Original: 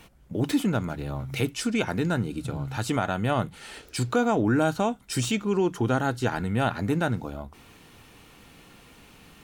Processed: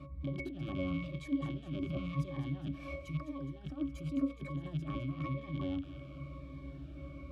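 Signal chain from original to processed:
loose part that buzzes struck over −34 dBFS, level −17 dBFS
speed change +29%
compressor whose output falls as the input rises −31 dBFS, ratio −0.5
brickwall limiter −18.5 dBFS, peak gain reduction 8.5 dB
mains hum 60 Hz, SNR 21 dB
resonances in every octave C#, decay 0.24 s
delay with a high-pass on its return 208 ms, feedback 63%, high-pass 1,500 Hz, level −10 dB
phaser whose notches keep moving one way falling 0.95 Hz
level +12 dB

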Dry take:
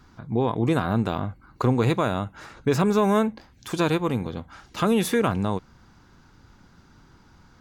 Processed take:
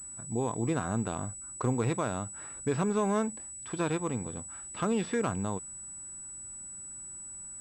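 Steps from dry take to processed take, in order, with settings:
de-essing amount 50%
switching amplifier with a slow clock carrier 7,900 Hz
level −8 dB

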